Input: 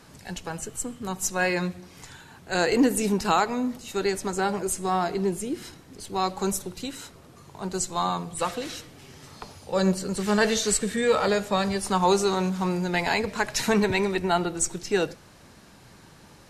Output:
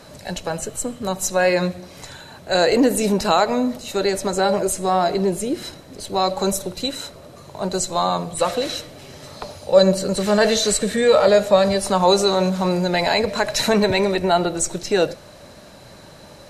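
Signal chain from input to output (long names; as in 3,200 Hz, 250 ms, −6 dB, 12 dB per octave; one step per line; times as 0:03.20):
in parallel at −0.5 dB: brickwall limiter −20.5 dBFS, peak gain reduction 11.5 dB
on the sum: hollow resonant body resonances 590/4,000 Hz, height 13 dB, ringing for 30 ms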